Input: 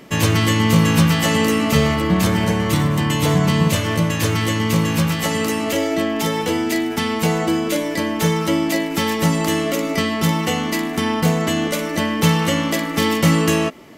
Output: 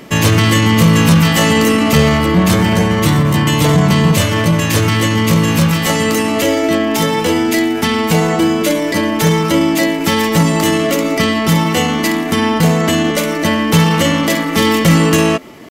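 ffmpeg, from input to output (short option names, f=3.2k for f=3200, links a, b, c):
-af "acontrast=75,atempo=0.89"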